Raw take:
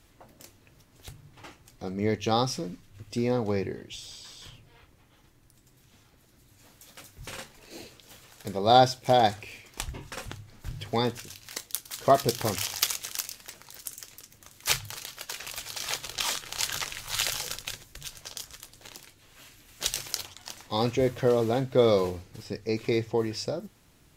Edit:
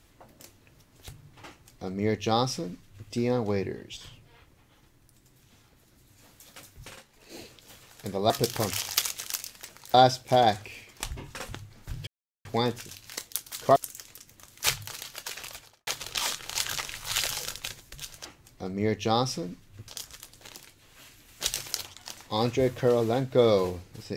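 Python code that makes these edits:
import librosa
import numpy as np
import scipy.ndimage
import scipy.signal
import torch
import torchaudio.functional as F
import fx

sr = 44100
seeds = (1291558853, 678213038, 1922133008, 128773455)

y = fx.studio_fade_out(x, sr, start_s=15.41, length_s=0.49)
y = fx.edit(y, sr, fx.duplicate(start_s=1.46, length_s=1.63, to_s=18.28),
    fx.cut(start_s=3.97, length_s=0.41),
    fx.fade_down_up(start_s=7.1, length_s=0.69, db=-11.0, fade_s=0.33),
    fx.insert_silence(at_s=10.84, length_s=0.38),
    fx.move(start_s=12.15, length_s=1.64, to_s=8.71), tone=tone)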